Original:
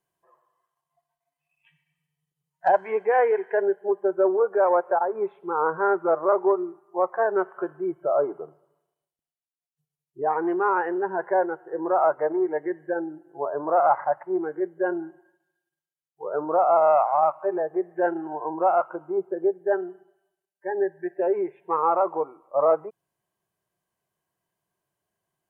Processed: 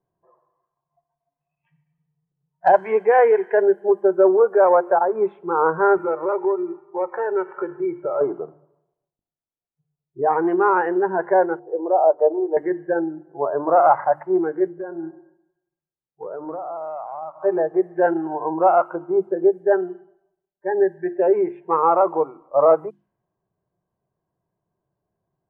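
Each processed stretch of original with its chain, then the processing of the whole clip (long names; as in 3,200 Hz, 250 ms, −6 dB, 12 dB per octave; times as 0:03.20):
0:05.97–0:08.21: parametric band 2,300 Hz +11.5 dB 0.52 octaves + comb filter 2.2 ms, depth 75% + downward compressor 2 to 1, threshold −31 dBFS
0:11.59–0:12.57: flat-topped band-pass 540 Hz, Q 1.3 + comb filter 6.6 ms, depth 34%
0:14.71–0:17.40: downward compressor 8 to 1, threshold −32 dBFS + high-frequency loss of the air 280 metres + repeating echo 131 ms, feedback 41%, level −22 dB
whole clip: low-pass that shuts in the quiet parts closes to 900 Hz, open at −20.5 dBFS; low-shelf EQ 290 Hz +7.5 dB; mains-hum notches 50/100/150/200/250/300/350 Hz; level +4 dB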